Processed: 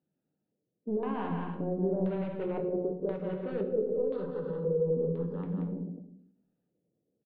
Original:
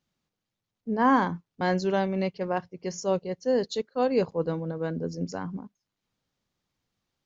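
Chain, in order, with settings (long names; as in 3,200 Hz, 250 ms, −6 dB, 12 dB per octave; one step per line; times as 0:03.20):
adaptive Wiener filter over 41 samples
high-pass filter 200 Hz 12 dB per octave
brickwall limiter −28.5 dBFS, peak gain reduction 19.5 dB
soft clipping −32.5 dBFS, distortion −16 dB
0:03.82–0:05.43: phaser with its sweep stopped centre 460 Hz, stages 8
bouncing-ball delay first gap 180 ms, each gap 0.6×, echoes 5
auto-filter low-pass square 0.97 Hz 480–3,600 Hz
high-frequency loss of the air 440 metres
rectangular room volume 120 cubic metres, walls mixed, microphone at 0.54 metres
every ending faded ahead of time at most 120 dB per second
level +4 dB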